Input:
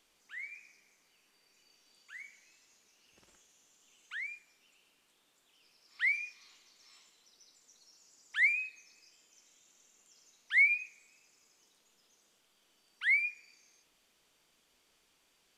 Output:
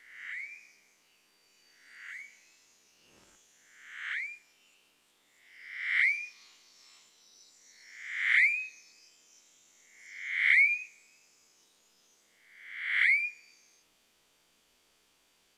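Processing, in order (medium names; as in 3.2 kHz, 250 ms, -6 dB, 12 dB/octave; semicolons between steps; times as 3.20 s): reverse spectral sustain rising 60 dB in 0.87 s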